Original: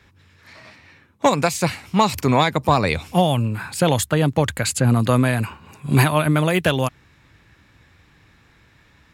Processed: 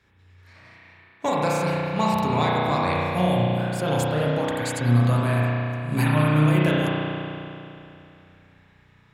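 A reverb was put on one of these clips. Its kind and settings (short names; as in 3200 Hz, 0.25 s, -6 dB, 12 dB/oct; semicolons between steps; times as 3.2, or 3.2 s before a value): spring tank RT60 2.8 s, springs 33 ms, chirp 70 ms, DRR -6 dB; gain -10.5 dB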